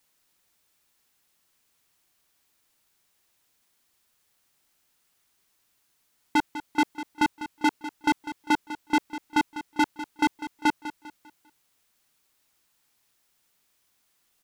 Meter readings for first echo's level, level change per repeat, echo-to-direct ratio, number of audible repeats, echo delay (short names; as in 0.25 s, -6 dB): -13.0 dB, -8.5 dB, -12.5 dB, 3, 0.199 s